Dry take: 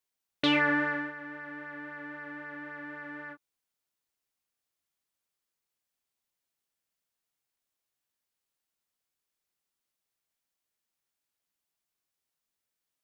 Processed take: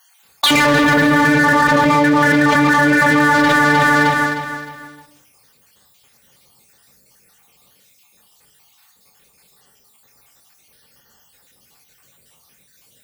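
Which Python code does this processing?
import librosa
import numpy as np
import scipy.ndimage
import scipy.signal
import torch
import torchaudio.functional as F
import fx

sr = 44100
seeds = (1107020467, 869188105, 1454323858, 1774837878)

p1 = fx.spec_dropout(x, sr, seeds[0], share_pct=55)
p2 = fx.room_shoebox(p1, sr, seeds[1], volume_m3=330.0, walls='mixed', distance_m=0.75)
p3 = fx.leveller(p2, sr, passes=5)
p4 = fx.highpass(p3, sr, hz=84.0, slope=6)
p5 = fx.low_shelf(p4, sr, hz=180.0, db=9.0)
p6 = fx.hum_notches(p5, sr, base_hz=50, count=6)
p7 = fx.notch_comb(p6, sr, f0_hz=330.0)
p8 = p7 + fx.echo_alternate(p7, sr, ms=154, hz=920.0, feedback_pct=57, wet_db=-11.0, dry=0)
p9 = fx.env_flatten(p8, sr, amount_pct=100)
y = p9 * librosa.db_to_amplitude(5.5)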